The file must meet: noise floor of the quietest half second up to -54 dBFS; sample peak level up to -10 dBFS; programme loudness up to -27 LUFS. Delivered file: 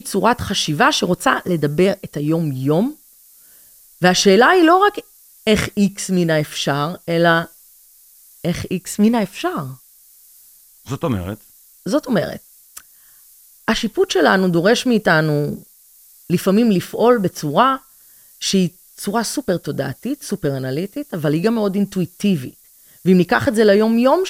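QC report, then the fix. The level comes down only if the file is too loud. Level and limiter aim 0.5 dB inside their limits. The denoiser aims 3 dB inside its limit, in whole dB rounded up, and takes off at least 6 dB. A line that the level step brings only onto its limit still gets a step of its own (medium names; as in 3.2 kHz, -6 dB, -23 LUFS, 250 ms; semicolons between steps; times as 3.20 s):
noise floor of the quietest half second -49 dBFS: fail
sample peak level -2.0 dBFS: fail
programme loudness -17.5 LUFS: fail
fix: trim -10 dB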